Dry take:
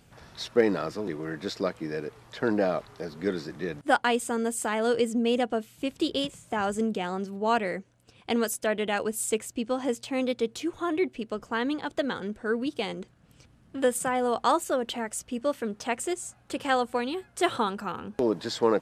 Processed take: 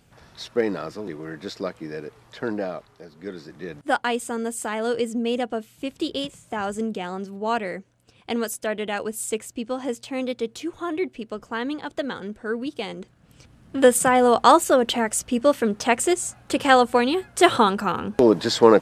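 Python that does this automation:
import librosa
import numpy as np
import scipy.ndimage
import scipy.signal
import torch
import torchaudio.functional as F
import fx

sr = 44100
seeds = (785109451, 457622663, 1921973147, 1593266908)

y = fx.gain(x, sr, db=fx.line((2.39, -0.5), (3.09, -8.0), (3.91, 0.5), (12.9, 0.5), (13.88, 9.5)))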